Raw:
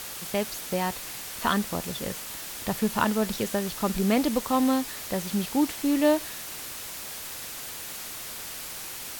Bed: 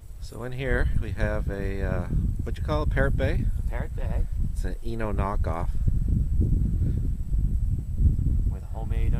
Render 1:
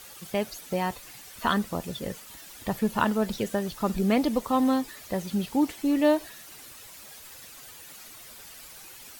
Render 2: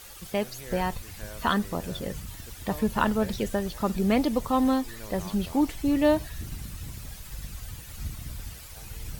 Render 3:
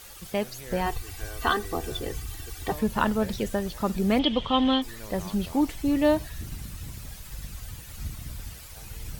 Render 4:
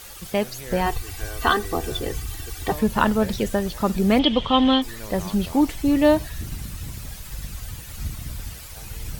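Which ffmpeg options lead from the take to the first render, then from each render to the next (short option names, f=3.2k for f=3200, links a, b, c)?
-af "afftdn=nr=11:nf=-38"
-filter_complex "[1:a]volume=-14.5dB[a];[0:a][a]amix=inputs=2:normalize=0"
-filter_complex "[0:a]asettb=1/sr,asplit=3[a][b][c];[a]atrim=end=0.864[d];[b]atrim=start=0.86:end=2.72,asetpts=PTS-STARTPTS,afade=t=in:d=0.004:c=qsin,afade=t=out:st=1.856:d=0.004:c=qsin,aecho=1:1:2.6:0.88,atrim=end_sample=82026[e];[c]atrim=start=2.716[f];[d][e]acrossfade=d=0.004:c1=hsin:c2=qsin[g];[g][f]acrossfade=d=0.004:c1=qsin:c2=hsin,asettb=1/sr,asplit=3[h][i][j];[h]atrim=end=4.194[k];[i]atrim=start=4.19:end=4.82,asetpts=PTS-STARTPTS,afade=t=in:d=0.004:c=qsin,afade=t=out:st=0.626:d=0.004:c=qsin,lowpass=f=3.2k:t=q:w=14[l];[j]atrim=start=4.816[m];[k][l]acrossfade=d=0.004:c1=hsin:c2=qsin[n];[n][m]acrossfade=d=0.004:c1=qsin:c2=hsin"
-af "volume=5dB"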